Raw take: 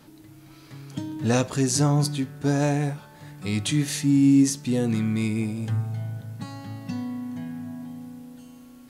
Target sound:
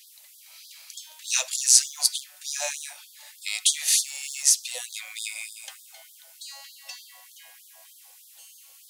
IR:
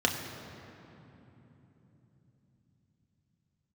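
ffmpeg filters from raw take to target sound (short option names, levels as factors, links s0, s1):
-af "aexciter=amount=5.9:drive=1.4:freq=2100,acrusher=bits=8:mode=log:mix=0:aa=0.000001,afftfilt=real='re*gte(b*sr/1024,500*pow(3300/500,0.5+0.5*sin(2*PI*3.3*pts/sr)))':imag='im*gte(b*sr/1024,500*pow(3300/500,0.5+0.5*sin(2*PI*3.3*pts/sr)))':win_size=1024:overlap=0.75,volume=0.531"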